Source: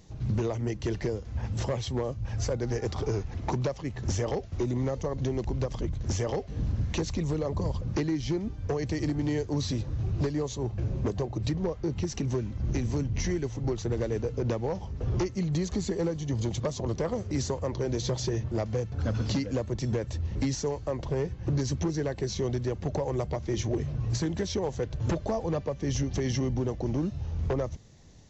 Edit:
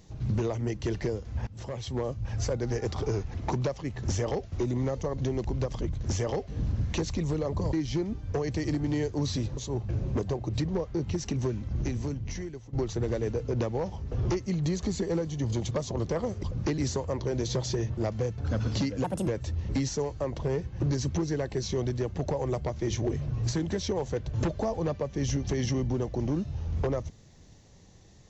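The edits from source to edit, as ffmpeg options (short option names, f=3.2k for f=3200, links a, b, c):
-filter_complex "[0:a]asplit=9[a][b][c][d][e][f][g][h][i];[a]atrim=end=1.47,asetpts=PTS-STARTPTS,afade=t=out:st=1.466:d=0.004:c=hsin:silence=0.105925[j];[b]atrim=start=1.47:end=7.732,asetpts=PTS-STARTPTS,afade=t=in:d=0.59:silence=0.105925[k];[c]atrim=start=8.078:end=9.922[l];[d]atrim=start=10.458:end=13.62,asetpts=PTS-STARTPTS,afade=t=out:st=2.082:d=1.08:silence=0.188365[m];[e]atrim=start=13.62:end=17.322,asetpts=PTS-STARTPTS,afade=t=in:d=0.004:c=hsin:silence=0.188365[n];[f]atrim=start=7.728:end=8.082[o];[g]atrim=start=17.318:end=19.584[p];[h]atrim=start=19.58:end=19.94,asetpts=PTS-STARTPTS,asetrate=67473,aresample=44100,atrim=end_sample=10376,asetpts=PTS-STARTPTS[q];[i]atrim=start=19.936[r];[j][k]concat=n=2:v=0:a=1[s];[s][l]acrossfade=d=0.004:c1=hsin:c2=hsin[t];[m][n]concat=n=2:v=0:a=1[u];[t][u]acrossfade=d=0.004:c1=hsin:c2=hsin[v];[v][o]acrossfade=d=0.004:c1=hsin:c2=hsin[w];[w][p]acrossfade=d=0.004:c1=hsin:c2=hsin[x];[x][q]acrossfade=d=0.004:c1=hsin:c2=hsin[y];[y][r]acrossfade=d=0.004:c1=hsin:c2=hsin"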